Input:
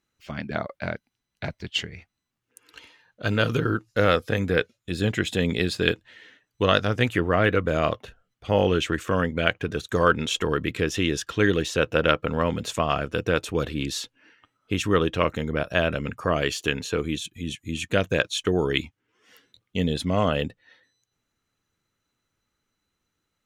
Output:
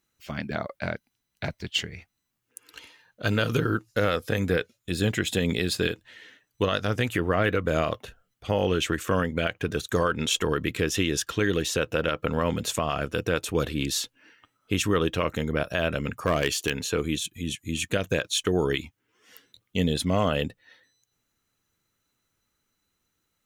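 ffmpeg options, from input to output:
ffmpeg -i in.wav -filter_complex "[0:a]asettb=1/sr,asplit=3[link_01][link_02][link_03];[link_01]atrim=end=16.084[link_04];[link_02]atrim=start=16.08:end=16.71,asetpts=PTS-STARTPTS,afade=type=in:duration=0.004:curve=qsin,afade=type=out:start_time=0.626:duration=0.004:curve=qsin,aeval=exprs='clip(val(0),-1,0.178)':channel_layout=same[link_05];[link_03]atrim=start=16.706[link_06];[link_04][link_05]acrossfade=duration=0.004:curve1=hsin:curve2=qsin[link_07];[link_07][link_06]acrossfade=duration=0.004:curve1=qsin:curve2=hsin,highshelf=frequency=8400:gain=11.5,alimiter=limit=-12.5dB:level=0:latency=1:release=115" out.wav

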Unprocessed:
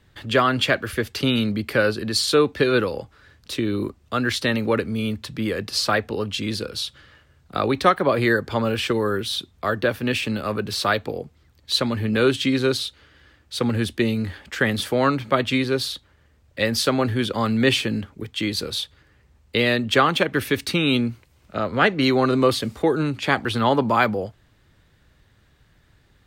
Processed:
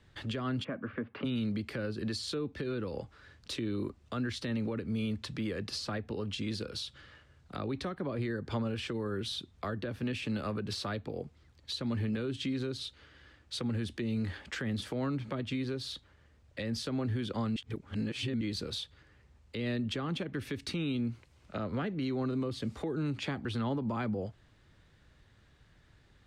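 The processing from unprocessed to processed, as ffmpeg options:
ffmpeg -i in.wav -filter_complex "[0:a]asplit=3[link_01][link_02][link_03];[link_01]afade=type=out:start_time=0.63:duration=0.02[link_04];[link_02]highpass=frequency=120:width=0.5412,highpass=frequency=120:width=1.3066,equalizer=frequency=130:width_type=q:width=4:gain=-6,equalizer=frequency=250:width_type=q:width=4:gain=6,equalizer=frequency=370:width_type=q:width=4:gain=-5,equalizer=frequency=560:width_type=q:width=4:gain=3,equalizer=frequency=1100:width_type=q:width=4:gain=6,equalizer=frequency=1900:width_type=q:width=4:gain=-4,lowpass=frequency=2100:width=0.5412,lowpass=frequency=2100:width=1.3066,afade=type=in:start_time=0.63:duration=0.02,afade=type=out:start_time=1.24:duration=0.02[link_05];[link_03]afade=type=in:start_time=1.24:duration=0.02[link_06];[link_04][link_05][link_06]amix=inputs=3:normalize=0,asplit=3[link_07][link_08][link_09];[link_07]atrim=end=17.562[link_10];[link_08]atrim=start=17.558:end=18.412,asetpts=PTS-STARTPTS,areverse[link_11];[link_09]atrim=start=18.408[link_12];[link_10][link_11]acrossfade=duration=0.004:curve1=hsin:curve2=hsin[link_13];[link_13][link_12]acrossfade=duration=0.004:curve1=hsin:curve2=hsin,acrossover=split=330[link_14][link_15];[link_15]acompressor=threshold=-31dB:ratio=5[link_16];[link_14][link_16]amix=inputs=2:normalize=0,alimiter=limit=-21.5dB:level=0:latency=1:release=137,lowpass=8500,volume=-4.5dB" out.wav

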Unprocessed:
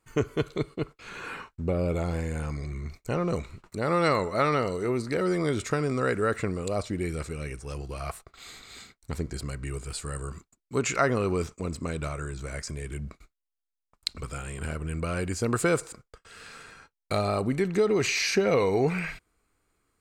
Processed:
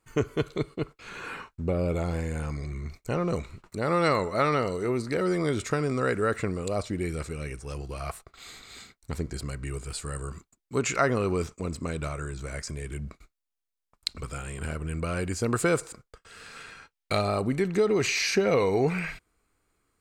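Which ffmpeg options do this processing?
ffmpeg -i in.wav -filter_complex "[0:a]asettb=1/sr,asplit=3[link_01][link_02][link_03];[link_01]atrim=end=16.564[link_04];[link_02]atrim=start=16.56:end=17.22,asetpts=PTS-STARTPTS,afade=type=in:duration=0.004:curve=qsin,afade=type=out:start_time=0.656:duration=0.004:curve=qsin,equalizer=frequency=2800:width=0.81:gain=5.5[link_05];[link_03]atrim=start=17.216[link_06];[link_04][link_05]acrossfade=duration=0.004:curve1=hsin:curve2=qsin[link_07];[link_07][link_06]acrossfade=duration=0.004:curve1=qsin:curve2=hsin" out.wav

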